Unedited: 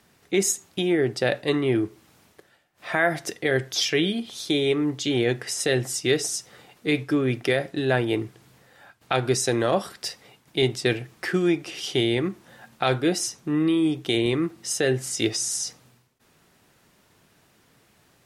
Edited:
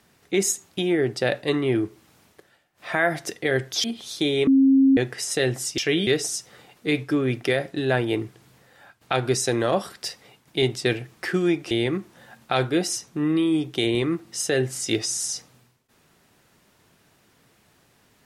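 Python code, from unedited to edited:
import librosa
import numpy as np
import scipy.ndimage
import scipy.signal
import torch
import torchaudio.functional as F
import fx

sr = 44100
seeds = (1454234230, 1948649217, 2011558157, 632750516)

y = fx.edit(x, sr, fx.move(start_s=3.84, length_s=0.29, to_s=6.07),
    fx.bleep(start_s=4.76, length_s=0.5, hz=269.0, db=-12.5),
    fx.cut(start_s=11.71, length_s=0.31), tone=tone)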